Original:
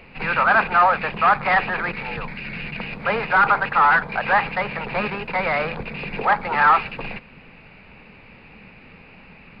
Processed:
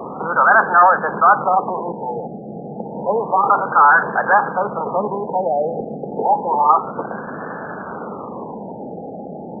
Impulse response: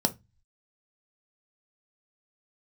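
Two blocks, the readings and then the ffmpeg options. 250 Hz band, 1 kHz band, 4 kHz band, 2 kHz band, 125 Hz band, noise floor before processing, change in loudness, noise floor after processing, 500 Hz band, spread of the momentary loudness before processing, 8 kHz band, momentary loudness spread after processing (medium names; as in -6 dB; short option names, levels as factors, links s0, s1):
+4.5 dB, +4.5 dB, under -40 dB, +0.5 dB, 0.0 dB, -47 dBFS, +3.5 dB, -32 dBFS, +6.5 dB, 14 LU, no reading, 19 LU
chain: -af "aeval=exprs='val(0)+0.5*0.0891*sgn(val(0))':c=same,highpass=270,lowpass=2400,afftfilt=real='re*lt(b*sr/1024,830*pow(1800/830,0.5+0.5*sin(2*PI*0.3*pts/sr)))':imag='im*lt(b*sr/1024,830*pow(1800/830,0.5+0.5*sin(2*PI*0.3*pts/sr)))':win_size=1024:overlap=0.75,volume=1.5"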